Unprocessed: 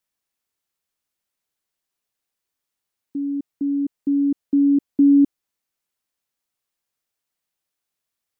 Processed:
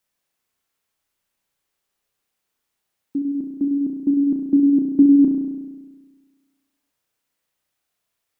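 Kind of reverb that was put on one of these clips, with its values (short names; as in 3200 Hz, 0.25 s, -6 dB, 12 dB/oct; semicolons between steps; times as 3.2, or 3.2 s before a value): spring tank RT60 1.4 s, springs 33 ms, chirp 65 ms, DRR 0.5 dB; gain +4 dB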